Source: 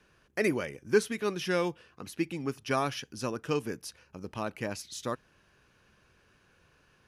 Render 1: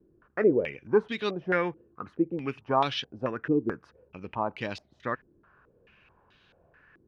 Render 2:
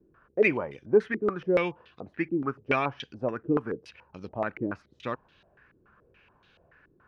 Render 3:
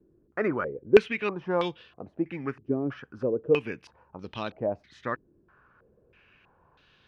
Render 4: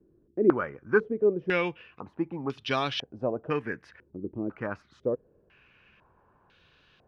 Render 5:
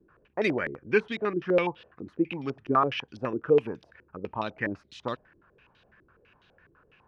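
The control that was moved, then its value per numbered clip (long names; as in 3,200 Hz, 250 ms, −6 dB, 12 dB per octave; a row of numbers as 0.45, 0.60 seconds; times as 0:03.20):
low-pass on a step sequencer, speed: 4.6, 7, 3.1, 2, 12 Hertz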